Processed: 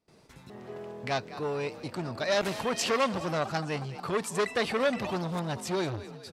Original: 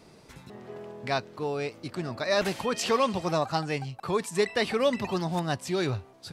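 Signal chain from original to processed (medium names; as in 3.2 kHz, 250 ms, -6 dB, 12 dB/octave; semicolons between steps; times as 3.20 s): gate with hold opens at -44 dBFS; level rider gain up to 6.5 dB; frequency-shifting echo 209 ms, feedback 47%, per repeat +41 Hz, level -17 dB; transformer saturation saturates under 1.5 kHz; trim -5.5 dB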